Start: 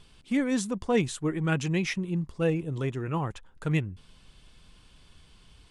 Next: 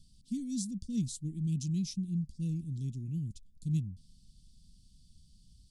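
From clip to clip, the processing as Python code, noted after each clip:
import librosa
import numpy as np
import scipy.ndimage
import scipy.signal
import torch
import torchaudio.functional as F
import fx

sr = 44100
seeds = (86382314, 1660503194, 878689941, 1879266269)

y = scipy.signal.sosfilt(scipy.signal.ellip(3, 1.0, 60, [220.0, 4600.0], 'bandstop', fs=sr, output='sos'), x)
y = F.gain(torch.from_numpy(y), -3.0).numpy()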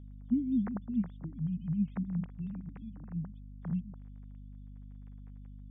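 y = fx.sine_speech(x, sr)
y = fx.add_hum(y, sr, base_hz=50, snr_db=11)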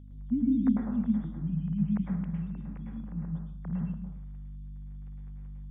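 y = fx.rev_plate(x, sr, seeds[0], rt60_s=0.6, hf_ratio=0.8, predelay_ms=95, drr_db=-2.0)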